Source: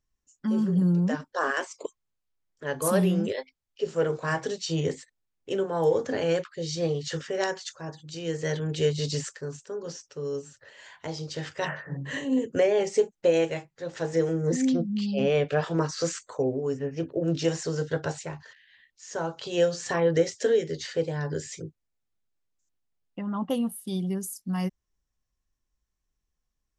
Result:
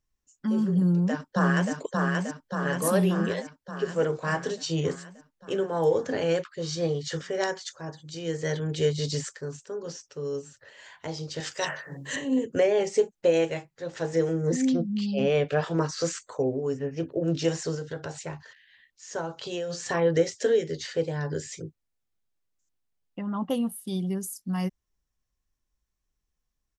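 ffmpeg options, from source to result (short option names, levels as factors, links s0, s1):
-filter_complex "[0:a]asplit=2[s0][s1];[s1]afade=t=in:st=0.78:d=0.01,afade=t=out:st=1.73:d=0.01,aecho=0:1:580|1160|1740|2320|2900|3480|4060|4640|5220|5800|6380:0.794328|0.516313|0.335604|0.218142|0.141793|0.0921652|0.0599074|0.0389398|0.0253109|0.0164521|0.0106938[s2];[s0][s2]amix=inputs=2:normalize=0,asettb=1/sr,asplit=3[s3][s4][s5];[s3]atrim=end=6.774[s6];[s4]atrim=start=6.77:end=9.46,asetpts=PTS-STARTPTS,afade=t=in:d=0.004:c=qsin,afade=t=out:st=2.686:d=0.004:c=qsin,bandreject=f=2700:w=12[s7];[s5]atrim=start=9.456[s8];[s6][s7]acrossfade=d=0.004:c1=hsin:c2=qsin[s9];[s9][s8]acrossfade=d=0.004:c1=qsin:c2=hsin,asettb=1/sr,asplit=3[s10][s11][s12];[s10]atrim=end=11.404[s13];[s11]atrim=start=11.4:end=12.16,asetpts=PTS-STARTPTS,afade=t=in:d=0.004:c=qsin,afade=t=out:st=0.756:d=0.004:c=qsin,bass=f=250:g=-8,treble=f=4000:g=14[s14];[s12]atrim=start=12.156[s15];[s13][s14]acrossfade=d=0.004:c1=hsin:c2=qsin[s16];[s16][s15]acrossfade=d=0.004:c1=qsin:c2=hsin,asettb=1/sr,asplit=3[s17][s18][s19];[s17]atrim=end=17.754[s20];[s18]atrim=start=17.75:end=18.26,asetpts=PTS-STARTPTS,afade=t=in:d=0.004:c=qsin,afade=t=out:st=0.506:d=0.004:c=qsin,acompressor=threshold=0.0224:ratio=2.5:attack=3.2:release=140:knee=1:detection=peak[s21];[s19]atrim=start=18.256[s22];[s20][s21]acrossfade=d=0.004:c1=hsin:c2=qsin[s23];[s23][s22]acrossfade=d=0.004:c1=qsin:c2=hsin,asplit=3[s24][s25][s26];[s24]afade=t=out:st=19.2:d=0.02[s27];[s25]acompressor=threshold=0.0398:ratio=12:attack=3.2:release=140:knee=1:detection=peak,afade=t=in:st=19.2:d=0.02,afade=t=out:st=19.69:d=0.02[s28];[s26]afade=t=in:st=19.69:d=0.02[s29];[s27][s28][s29]amix=inputs=3:normalize=0"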